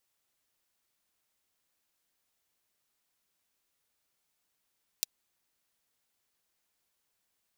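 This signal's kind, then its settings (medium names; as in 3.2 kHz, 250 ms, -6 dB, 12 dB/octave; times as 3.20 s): closed hi-hat, high-pass 4 kHz, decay 0.02 s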